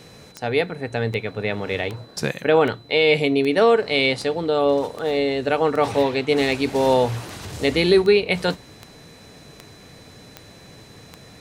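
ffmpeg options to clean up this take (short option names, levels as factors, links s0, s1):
-af "adeclick=t=4,bandreject=f=4000:w=30"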